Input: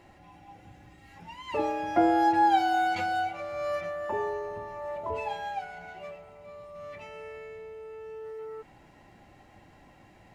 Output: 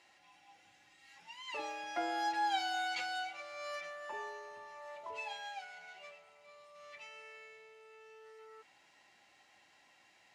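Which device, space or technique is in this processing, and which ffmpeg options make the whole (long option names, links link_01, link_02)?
piezo pickup straight into a mixer: -af "lowpass=5400,aderivative,volume=7dB"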